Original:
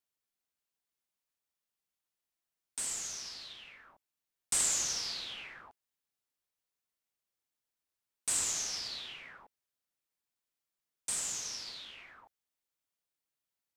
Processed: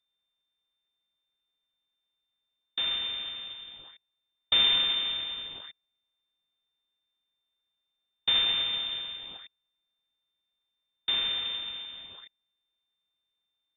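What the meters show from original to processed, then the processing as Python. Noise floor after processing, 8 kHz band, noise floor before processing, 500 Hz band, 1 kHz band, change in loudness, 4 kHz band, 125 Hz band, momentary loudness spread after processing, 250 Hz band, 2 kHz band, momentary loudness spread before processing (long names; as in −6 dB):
−83 dBFS, below −40 dB, below −85 dBFS, +6.0 dB, +6.0 dB, +7.0 dB, +15.0 dB, can't be measured, 20 LU, +5.5 dB, +8.0 dB, 19 LU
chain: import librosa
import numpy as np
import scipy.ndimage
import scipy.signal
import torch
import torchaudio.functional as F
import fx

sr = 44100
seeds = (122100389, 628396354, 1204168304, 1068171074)

y = fx.low_shelf_res(x, sr, hz=370.0, db=-7.0, q=3.0)
y = np.abs(y)
y = fx.freq_invert(y, sr, carrier_hz=3600)
y = F.gain(torch.from_numpy(y), 6.5).numpy()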